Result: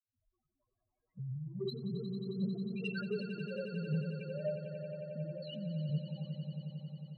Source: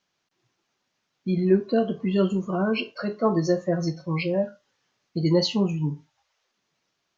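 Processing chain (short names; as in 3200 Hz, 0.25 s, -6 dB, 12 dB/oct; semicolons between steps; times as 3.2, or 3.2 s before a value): tape start at the beginning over 1.71 s; limiter -20.5 dBFS, peak gain reduction 11.5 dB; low-pass opened by the level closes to 1700 Hz, open at -25 dBFS; high shelf 2400 Hz +10 dB; negative-ratio compressor -38 dBFS, ratio -1; expander -60 dBFS; loudest bins only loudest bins 1; soft clip -34.5 dBFS, distortion -21 dB; envelope flanger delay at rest 8.3 ms, full sweep at -40 dBFS; swelling echo 90 ms, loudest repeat 5, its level -12 dB; gain +7.5 dB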